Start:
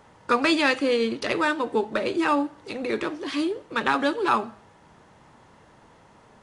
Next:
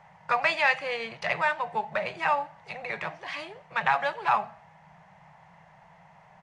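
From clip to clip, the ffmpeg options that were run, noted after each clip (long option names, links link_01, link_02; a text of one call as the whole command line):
ffmpeg -i in.wav -af "firequalizer=gain_entry='entry(110,0);entry(170,14);entry(250,-23);entry(690,12);entry(1300,2);entry(2000,11);entry(3500,-1);entry(6000,-1);entry(9200,-8)':delay=0.05:min_phase=1,volume=-7.5dB" out.wav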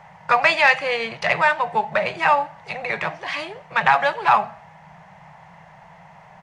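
ffmpeg -i in.wav -af "acontrast=82,volume=1.5dB" out.wav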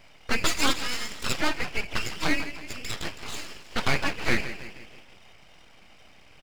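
ffmpeg -i in.wav -filter_complex "[0:a]afftfilt=real='real(if(between(b,1,1012),(2*floor((b-1)/92)+1)*92-b,b),0)':imag='imag(if(between(b,1,1012),(2*floor((b-1)/92)+1)*92-b,b),0)*if(between(b,1,1012),-1,1)':win_size=2048:overlap=0.75,asplit=6[link_01][link_02][link_03][link_04][link_05][link_06];[link_02]adelay=161,afreqshift=53,volume=-12.5dB[link_07];[link_03]adelay=322,afreqshift=106,volume=-18dB[link_08];[link_04]adelay=483,afreqshift=159,volume=-23.5dB[link_09];[link_05]adelay=644,afreqshift=212,volume=-29dB[link_10];[link_06]adelay=805,afreqshift=265,volume=-34.6dB[link_11];[link_01][link_07][link_08][link_09][link_10][link_11]amix=inputs=6:normalize=0,aeval=exprs='abs(val(0))':channel_layout=same,volume=-5.5dB" out.wav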